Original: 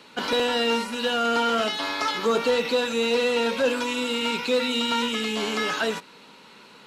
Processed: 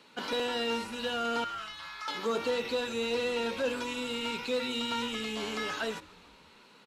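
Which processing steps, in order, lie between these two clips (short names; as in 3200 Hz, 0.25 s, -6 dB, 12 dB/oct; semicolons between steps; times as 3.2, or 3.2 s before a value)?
1.44–2.08 ladder high-pass 1000 Hz, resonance 35%; on a send: frequency-shifting echo 0.146 s, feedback 62%, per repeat -130 Hz, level -22 dB; on the sum: gain -8.5 dB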